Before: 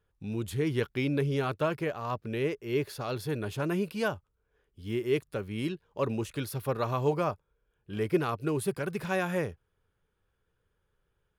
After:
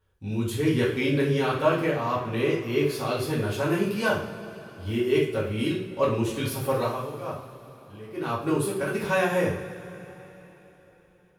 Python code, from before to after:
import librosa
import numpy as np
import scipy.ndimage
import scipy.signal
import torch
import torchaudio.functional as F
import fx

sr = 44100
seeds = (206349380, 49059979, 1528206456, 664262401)

y = fx.tremolo(x, sr, hz=1.1, depth=0.88, at=(6.67, 8.81))
y = fx.rev_double_slope(y, sr, seeds[0], early_s=0.46, late_s=3.9, knee_db=-19, drr_db=-6.0)